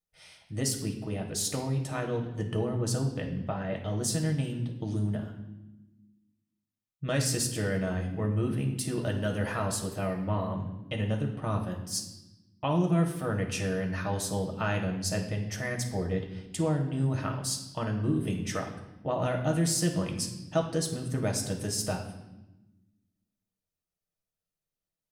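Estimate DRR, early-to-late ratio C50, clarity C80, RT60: 1.5 dB, 7.5 dB, 10.0 dB, 1.0 s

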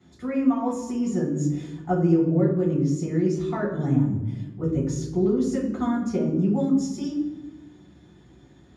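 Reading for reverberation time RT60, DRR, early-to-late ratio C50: 1.2 s, -8.0 dB, 3.0 dB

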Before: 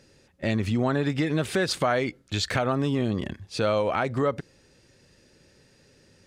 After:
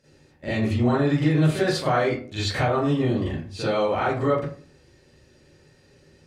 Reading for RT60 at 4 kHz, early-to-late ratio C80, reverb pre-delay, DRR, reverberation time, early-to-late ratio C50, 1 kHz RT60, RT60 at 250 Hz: 0.25 s, 6.5 dB, 36 ms, -11.5 dB, 0.45 s, 0.0 dB, 0.40 s, 0.55 s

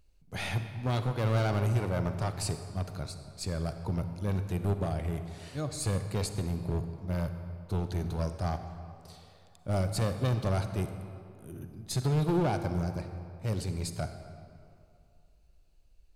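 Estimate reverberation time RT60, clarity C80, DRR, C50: 2.6 s, 9.0 dB, 8.0 dB, 8.5 dB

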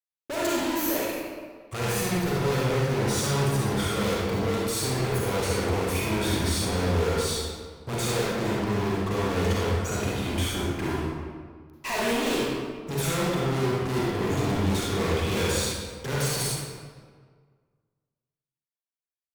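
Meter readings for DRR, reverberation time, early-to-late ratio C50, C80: -6.0 dB, 1.7 s, -3.0 dB, 0.0 dB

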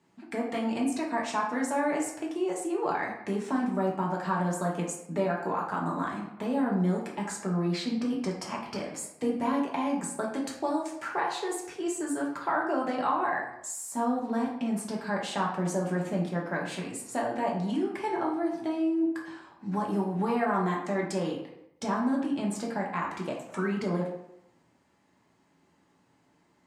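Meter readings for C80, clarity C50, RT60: 8.0 dB, 5.0 dB, 0.85 s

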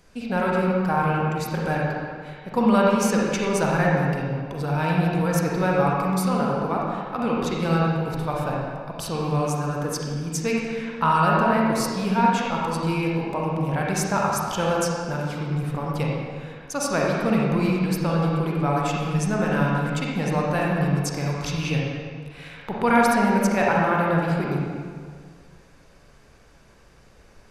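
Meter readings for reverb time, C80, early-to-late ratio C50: 1.9 s, 0.5 dB, -2.0 dB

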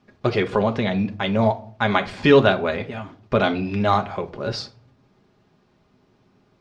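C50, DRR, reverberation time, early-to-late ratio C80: 17.0 dB, 4.0 dB, 0.50 s, 22.0 dB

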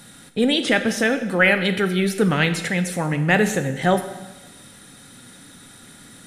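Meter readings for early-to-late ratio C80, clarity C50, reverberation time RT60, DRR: 12.0 dB, 10.5 dB, 1.1 s, 8.0 dB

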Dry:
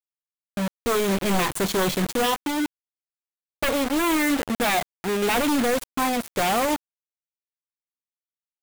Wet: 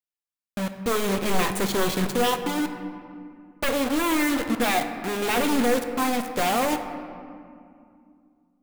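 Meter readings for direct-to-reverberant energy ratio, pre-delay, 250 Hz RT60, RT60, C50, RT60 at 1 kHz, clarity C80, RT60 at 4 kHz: 6.5 dB, 4 ms, 3.6 s, 2.4 s, 8.5 dB, 2.3 s, 9.5 dB, 1.3 s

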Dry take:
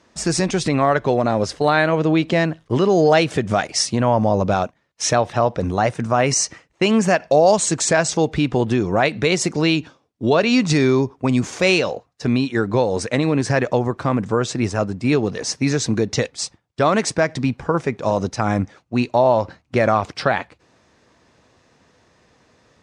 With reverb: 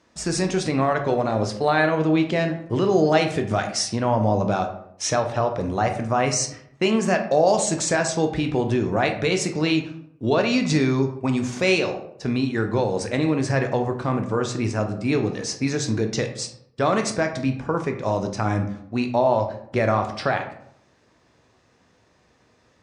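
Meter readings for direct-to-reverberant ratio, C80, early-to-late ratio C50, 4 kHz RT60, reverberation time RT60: 5.0 dB, 12.5 dB, 9.5 dB, 0.40 s, 0.70 s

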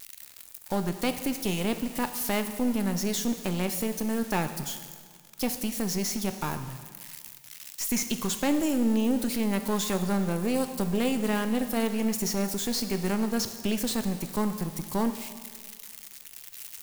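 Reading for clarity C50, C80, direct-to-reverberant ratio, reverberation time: 10.0 dB, 11.5 dB, 8.5 dB, 1.7 s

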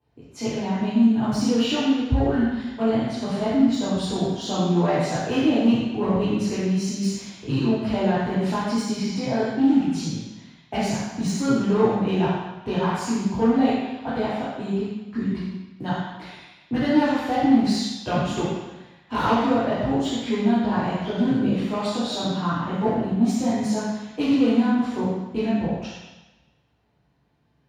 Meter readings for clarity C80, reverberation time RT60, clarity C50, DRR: 0.5 dB, 1.1 s, -2.0 dB, -11.0 dB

